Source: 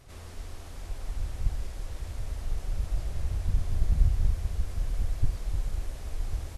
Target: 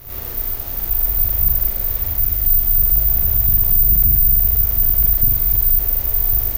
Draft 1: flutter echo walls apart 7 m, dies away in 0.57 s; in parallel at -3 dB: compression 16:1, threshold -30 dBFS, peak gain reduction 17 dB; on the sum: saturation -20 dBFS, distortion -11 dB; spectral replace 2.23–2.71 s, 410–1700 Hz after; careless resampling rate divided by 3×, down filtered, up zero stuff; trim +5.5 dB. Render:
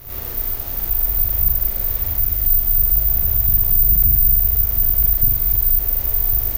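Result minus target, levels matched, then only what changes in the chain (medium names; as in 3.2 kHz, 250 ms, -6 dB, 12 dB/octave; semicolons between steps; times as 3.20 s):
compression: peak gain reduction +9.5 dB
change: compression 16:1, threshold -20 dBFS, peak gain reduction 7.5 dB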